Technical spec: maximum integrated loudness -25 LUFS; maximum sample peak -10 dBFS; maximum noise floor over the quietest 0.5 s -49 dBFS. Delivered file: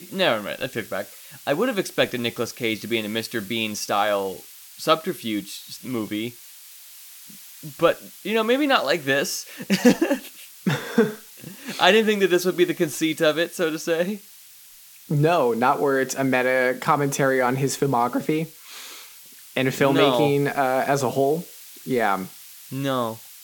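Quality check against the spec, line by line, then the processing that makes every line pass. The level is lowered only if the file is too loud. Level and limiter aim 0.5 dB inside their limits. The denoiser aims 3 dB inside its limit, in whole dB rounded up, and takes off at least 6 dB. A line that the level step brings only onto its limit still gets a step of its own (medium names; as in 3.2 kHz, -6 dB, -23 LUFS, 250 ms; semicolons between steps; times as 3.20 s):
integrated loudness -22.5 LUFS: fail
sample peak -2.5 dBFS: fail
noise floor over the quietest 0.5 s -47 dBFS: fail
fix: trim -3 dB; peak limiter -10.5 dBFS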